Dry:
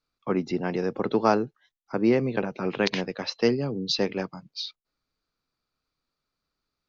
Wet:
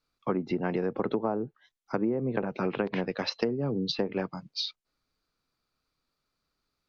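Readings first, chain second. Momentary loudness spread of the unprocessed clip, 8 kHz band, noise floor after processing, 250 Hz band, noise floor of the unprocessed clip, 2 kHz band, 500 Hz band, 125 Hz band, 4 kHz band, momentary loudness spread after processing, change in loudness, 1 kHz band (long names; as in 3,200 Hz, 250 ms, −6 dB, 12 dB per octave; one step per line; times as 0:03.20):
12 LU, can't be measured, −84 dBFS, −4.0 dB, below −85 dBFS, −5.5 dB, −4.5 dB, −2.5 dB, −3.5 dB, 6 LU, −4.0 dB, −5.5 dB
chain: treble cut that deepens with the level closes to 840 Hz, closed at −19.5 dBFS
downward compressor 10 to 1, threshold −26 dBFS, peak gain reduction 10.5 dB
level +2 dB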